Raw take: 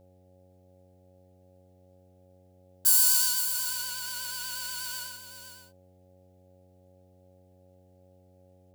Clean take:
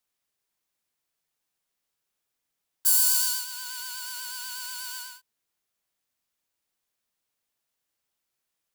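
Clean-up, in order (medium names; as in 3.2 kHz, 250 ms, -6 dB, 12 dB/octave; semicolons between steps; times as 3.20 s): de-hum 92.1 Hz, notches 9; band-stop 550 Hz, Q 30; inverse comb 511 ms -10 dB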